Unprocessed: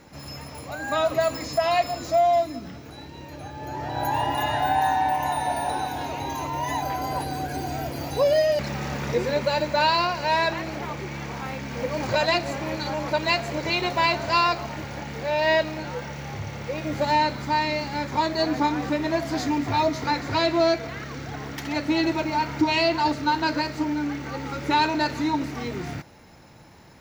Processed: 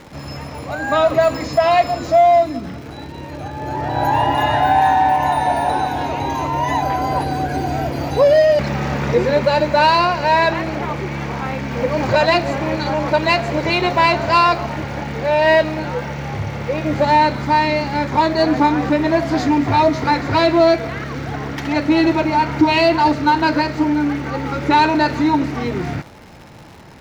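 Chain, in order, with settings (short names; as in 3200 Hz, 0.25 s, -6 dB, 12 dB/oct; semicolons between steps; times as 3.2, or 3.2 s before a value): crackle 270/s -36 dBFS; LPF 2600 Hz 6 dB/oct; in parallel at -8.5 dB: hard clip -21 dBFS, distortion -12 dB; on the sum: gain +6.5 dB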